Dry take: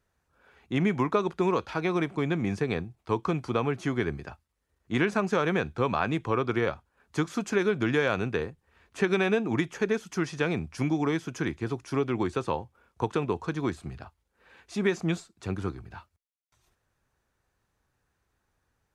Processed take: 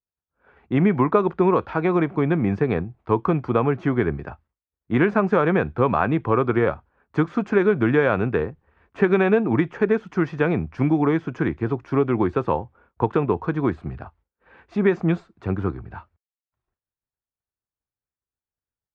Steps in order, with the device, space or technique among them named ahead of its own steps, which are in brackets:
hearing-loss simulation (low-pass filter 1,700 Hz 12 dB per octave; downward expander −58 dBFS)
level +7.5 dB

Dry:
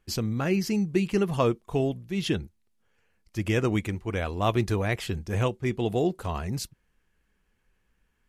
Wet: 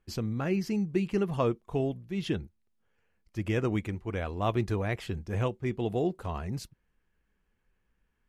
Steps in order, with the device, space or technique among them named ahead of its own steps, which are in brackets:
behind a face mask (high-shelf EQ 3,400 Hz −8 dB)
level −3.5 dB

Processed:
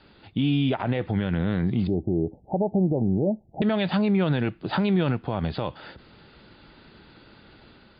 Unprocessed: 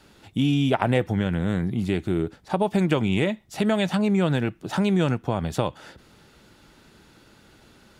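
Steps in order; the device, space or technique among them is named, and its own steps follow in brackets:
0:01.87–0:03.62: Butterworth low-pass 820 Hz 72 dB per octave
low-bitrate web radio (automatic gain control gain up to 3 dB; brickwall limiter −14.5 dBFS, peak gain reduction 11 dB; MP3 40 kbit/s 11,025 Hz)

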